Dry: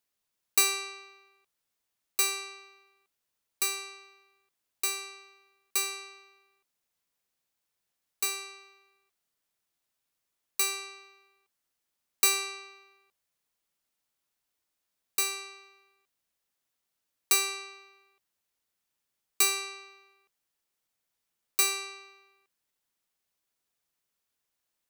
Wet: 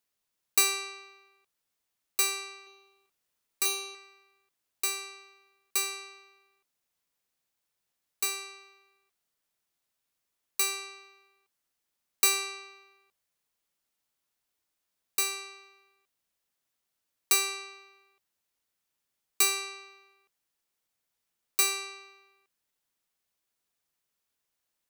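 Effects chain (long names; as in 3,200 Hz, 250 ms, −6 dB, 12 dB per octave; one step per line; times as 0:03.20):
0:02.63–0:03.95: double-tracking delay 36 ms −3.5 dB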